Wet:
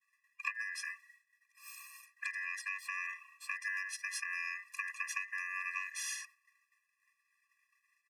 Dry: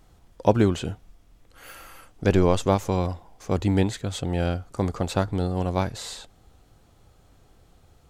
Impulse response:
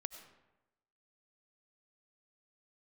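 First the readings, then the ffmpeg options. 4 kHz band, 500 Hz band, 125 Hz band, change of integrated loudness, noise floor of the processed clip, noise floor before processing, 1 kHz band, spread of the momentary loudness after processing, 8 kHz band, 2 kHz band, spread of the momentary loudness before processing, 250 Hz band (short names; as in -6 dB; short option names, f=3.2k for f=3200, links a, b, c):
-12.0 dB, under -40 dB, under -40 dB, -14.0 dB, -81 dBFS, -58 dBFS, -18.0 dB, 13 LU, -4.0 dB, +3.0 dB, 17 LU, under -40 dB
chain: -filter_complex "[0:a]agate=range=-33dB:threshold=-45dB:ratio=3:detection=peak,lowshelf=f=210:g=-9.5,acrossover=split=150[a][b];[b]acompressor=threshold=-24dB:ratio=6[c];[a][c]amix=inputs=2:normalize=0,equalizer=f=500:t=o:w=1:g=10,equalizer=f=1k:t=o:w=1:g=-5,equalizer=f=2k:t=o:w=1:g=9,equalizer=f=8k:t=o:w=1:g=4,acompressor=threshold=-27dB:ratio=6,afftfilt=real='re*(1-between(b*sr/4096,870,3100))':imag='im*(1-between(b*sr/4096,870,3100))':win_size=4096:overlap=0.75,aeval=exprs='val(0)*sin(2*PI*1900*n/s)':c=same,aecho=1:1:3.5:0.49,afftfilt=real='re*eq(mod(floor(b*sr/1024/400),2),0)':imag='im*eq(mod(floor(b*sr/1024/400),2),0)':win_size=1024:overlap=0.75"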